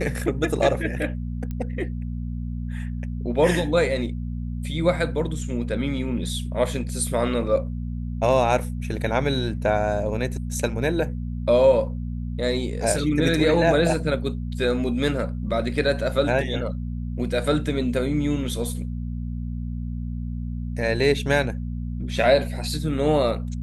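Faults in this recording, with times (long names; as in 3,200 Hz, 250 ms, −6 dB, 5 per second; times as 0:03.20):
mains hum 60 Hz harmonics 4 −29 dBFS
0:01.51: click −20 dBFS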